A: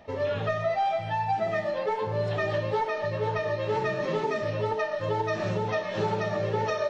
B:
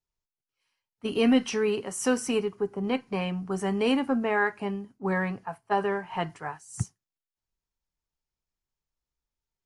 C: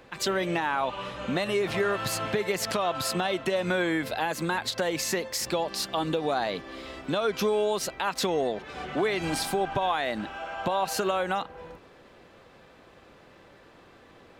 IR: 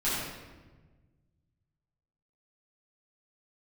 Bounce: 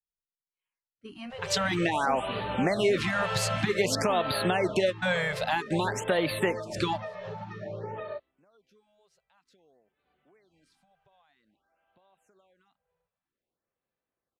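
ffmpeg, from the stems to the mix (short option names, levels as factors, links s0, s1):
-filter_complex "[0:a]highshelf=f=2700:g=-10,acompressor=threshold=0.0398:ratio=6,adelay=1300,volume=0.531[s0];[1:a]volume=0.2,asplit=2[s1][s2];[2:a]adynamicequalizer=threshold=0.00708:dfrequency=1000:dqfactor=1.9:tfrequency=1000:tqfactor=1.9:attack=5:release=100:ratio=0.375:range=2:mode=cutabove:tftype=bell,adelay=1300,volume=1.33[s3];[s2]apad=whole_len=692115[s4];[s3][s4]sidechaingate=range=0.01:threshold=0.00141:ratio=16:detection=peak[s5];[s0][s1][s5]amix=inputs=3:normalize=0,lowpass=9000,afftfilt=real='re*(1-between(b*sr/1024,260*pow(6800/260,0.5+0.5*sin(2*PI*0.52*pts/sr))/1.41,260*pow(6800/260,0.5+0.5*sin(2*PI*0.52*pts/sr))*1.41))':imag='im*(1-between(b*sr/1024,260*pow(6800/260,0.5+0.5*sin(2*PI*0.52*pts/sr))/1.41,260*pow(6800/260,0.5+0.5*sin(2*PI*0.52*pts/sr))*1.41))':win_size=1024:overlap=0.75"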